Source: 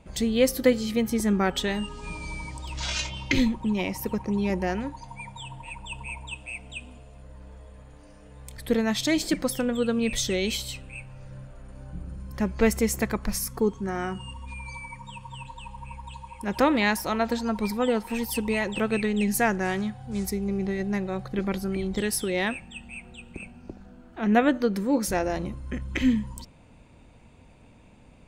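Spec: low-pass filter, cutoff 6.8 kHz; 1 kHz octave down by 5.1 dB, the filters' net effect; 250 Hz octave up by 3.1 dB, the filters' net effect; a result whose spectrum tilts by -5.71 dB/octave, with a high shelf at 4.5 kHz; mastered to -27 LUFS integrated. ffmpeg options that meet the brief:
-af "lowpass=6800,equalizer=f=250:t=o:g=4,equalizer=f=1000:t=o:g=-7.5,highshelf=f=4500:g=-7,volume=0.841"

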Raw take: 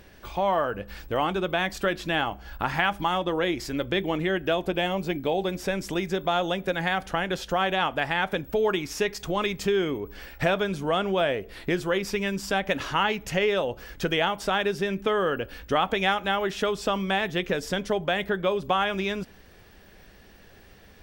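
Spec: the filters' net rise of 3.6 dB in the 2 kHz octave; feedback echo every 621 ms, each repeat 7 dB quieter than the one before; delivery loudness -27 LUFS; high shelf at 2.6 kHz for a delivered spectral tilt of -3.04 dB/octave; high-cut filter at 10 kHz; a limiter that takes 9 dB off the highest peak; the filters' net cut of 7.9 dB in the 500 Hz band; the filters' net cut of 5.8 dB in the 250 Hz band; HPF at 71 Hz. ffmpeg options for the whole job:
-af "highpass=71,lowpass=10000,equalizer=f=250:t=o:g=-6,equalizer=f=500:t=o:g=-9,equalizer=f=2000:t=o:g=3.5,highshelf=f=2600:g=4,alimiter=limit=0.158:level=0:latency=1,aecho=1:1:621|1242|1863|2484|3105:0.447|0.201|0.0905|0.0407|0.0183,volume=1.12"

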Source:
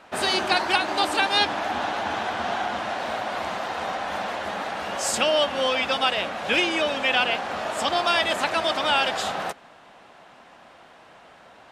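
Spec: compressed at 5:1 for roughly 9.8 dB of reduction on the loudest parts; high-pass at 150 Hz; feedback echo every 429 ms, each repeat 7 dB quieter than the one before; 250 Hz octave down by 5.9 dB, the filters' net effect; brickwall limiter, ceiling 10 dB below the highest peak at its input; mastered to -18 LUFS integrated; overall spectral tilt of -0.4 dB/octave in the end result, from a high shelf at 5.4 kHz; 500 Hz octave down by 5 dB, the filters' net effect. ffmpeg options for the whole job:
-af "highpass=150,equalizer=f=250:t=o:g=-5,equalizer=f=500:t=o:g=-6,highshelf=f=5400:g=9,acompressor=threshold=0.0447:ratio=5,alimiter=limit=0.0631:level=0:latency=1,aecho=1:1:429|858|1287|1716|2145:0.447|0.201|0.0905|0.0407|0.0183,volume=5.01"

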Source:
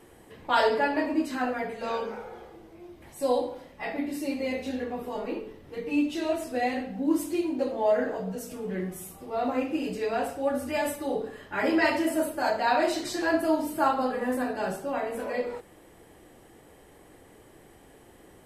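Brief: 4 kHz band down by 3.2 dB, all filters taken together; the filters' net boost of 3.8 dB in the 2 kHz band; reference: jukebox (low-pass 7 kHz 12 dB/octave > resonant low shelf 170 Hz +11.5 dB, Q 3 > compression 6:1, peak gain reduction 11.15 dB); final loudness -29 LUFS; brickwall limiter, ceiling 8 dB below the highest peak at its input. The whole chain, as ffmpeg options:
-af "equalizer=f=2000:t=o:g=6,equalizer=f=4000:t=o:g=-6,alimiter=limit=0.133:level=0:latency=1,lowpass=7000,lowshelf=f=170:t=q:w=3:g=11.5,acompressor=threshold=0.02:ratio=6,volume=2.99"

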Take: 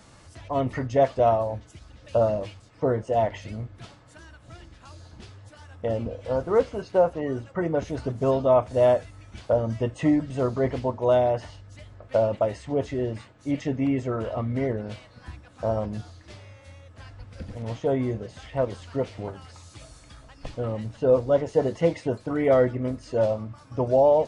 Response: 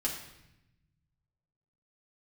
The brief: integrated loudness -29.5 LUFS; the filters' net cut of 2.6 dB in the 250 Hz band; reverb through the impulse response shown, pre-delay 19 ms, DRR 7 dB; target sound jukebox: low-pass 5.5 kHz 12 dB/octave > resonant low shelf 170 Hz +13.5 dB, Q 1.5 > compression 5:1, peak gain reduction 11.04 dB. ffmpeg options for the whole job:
-filter_complex "[0:a]equalizer=f=250:t=o:g=-6.5,asplit=2[s0][s1];[1:a]atrim=start_sample=2205,adelay=19[s2];[s1][s2]afir=irnorm=-1:irlink=0,volume=0.282[s3];[s0][s3]amix=inputs=2:normalize=0,lowpass=5500,lowshelf=f=170:t=q:w=1.5:g=13.5,acompressor=threshold=0.0708:ratio=5,volume=0.891"

